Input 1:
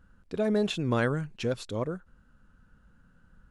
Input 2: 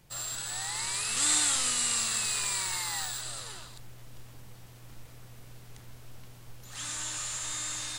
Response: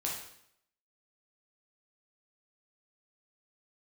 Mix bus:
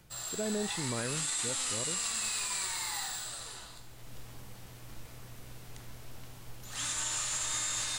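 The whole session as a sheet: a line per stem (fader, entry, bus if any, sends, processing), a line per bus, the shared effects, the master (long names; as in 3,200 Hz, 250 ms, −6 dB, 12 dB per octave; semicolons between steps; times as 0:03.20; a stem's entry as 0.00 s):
−7.0 dB, 0.00 s, no send, no processing
−1.0 dB, 0.00 s, send −6 dB, automatic ducking −17 dB, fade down 0.20 s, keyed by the first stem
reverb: on, RT60 0.70 s, pre-delay 6 ms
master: brickwall limiter −24 dBFS, peak gain reduction 8 dB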